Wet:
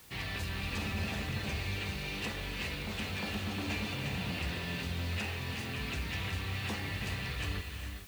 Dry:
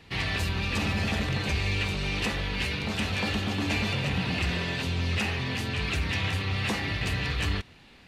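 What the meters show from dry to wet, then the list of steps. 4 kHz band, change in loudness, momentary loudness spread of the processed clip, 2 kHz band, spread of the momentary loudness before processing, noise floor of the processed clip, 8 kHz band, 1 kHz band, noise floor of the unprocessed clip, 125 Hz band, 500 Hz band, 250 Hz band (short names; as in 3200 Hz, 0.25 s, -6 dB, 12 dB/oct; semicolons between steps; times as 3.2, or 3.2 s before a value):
-8.0 dB, -8.0 dB, 2 LU, -8.0 dB, 2 LU, -41 dBFS, -6.0 dB, -8.0 dB, -53 dBFS, -8.0 dB, -8.0 dB, -8.0 dB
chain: requantised 8-bit, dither triangular; non-linear reverb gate 0.46 s rising, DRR 5 dB; gain -9 dB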